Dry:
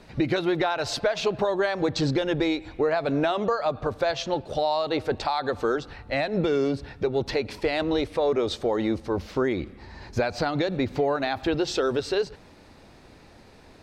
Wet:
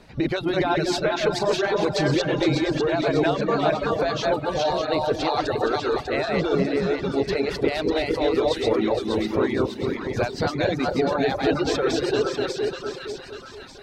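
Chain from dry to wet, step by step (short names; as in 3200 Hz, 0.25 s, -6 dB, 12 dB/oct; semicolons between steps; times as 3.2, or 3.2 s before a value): regenerating reverse delay 0.232 s, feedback 47%, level -0.5 dB; split-band echo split 920 Hz, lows 0.232 s, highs 0.596 s, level -5.5 dB; reverb removal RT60 0.85 s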